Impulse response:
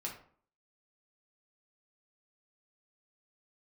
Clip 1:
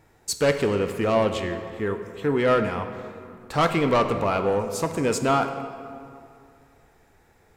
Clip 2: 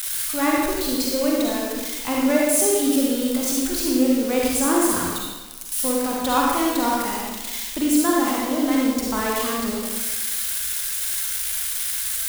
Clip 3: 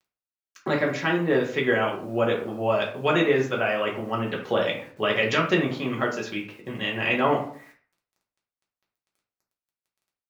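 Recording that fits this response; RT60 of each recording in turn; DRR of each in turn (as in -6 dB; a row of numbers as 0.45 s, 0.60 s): 3; 2.5 s, 1.2 s, 0.50 s; 7.0 dB, -3.5 dB, -3.0 dB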